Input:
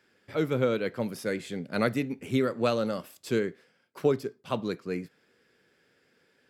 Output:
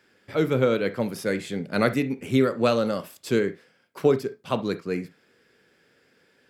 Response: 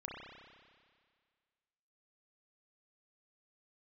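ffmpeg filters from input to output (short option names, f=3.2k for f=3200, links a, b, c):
-filter_complex "[0:a]asplit=2[a][b];[1:a]atrim=start_sample=2205,atrim=end_sample=3528[c];[b][c]afir=irnorm=-1:irlink=0,volume=-4dB[d];[a][d]amix=inputs=2:normalize=0,volume=2dB"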